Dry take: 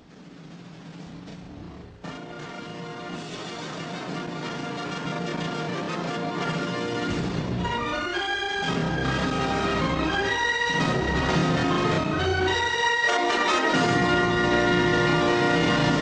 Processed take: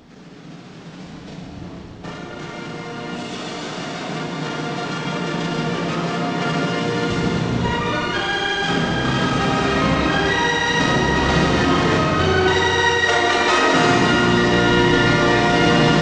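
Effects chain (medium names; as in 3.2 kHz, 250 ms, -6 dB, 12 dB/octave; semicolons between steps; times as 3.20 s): Schroeder reverb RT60 3.9 s, combs from 26 ms, DRR 0.5 dB; trim +4 dB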